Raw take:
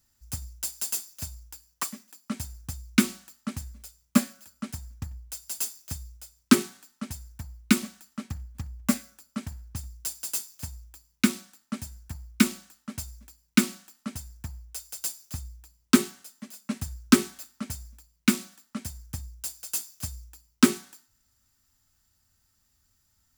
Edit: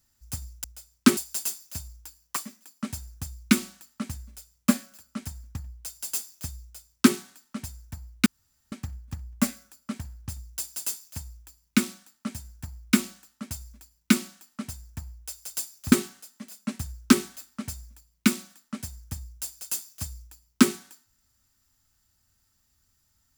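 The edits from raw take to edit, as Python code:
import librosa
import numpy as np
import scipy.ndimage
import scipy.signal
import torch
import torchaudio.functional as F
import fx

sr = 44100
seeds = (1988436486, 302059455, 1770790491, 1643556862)

y = fx.edit(x, sr, fx.duplicate(start_s=6.09, length_s=0.53, to_s=0.64),
    fx.room_tone_fill(start_s=7.73, length_s=0.46),
    fx.cut(start_s=15.39, length_s=0.55), tone=tone)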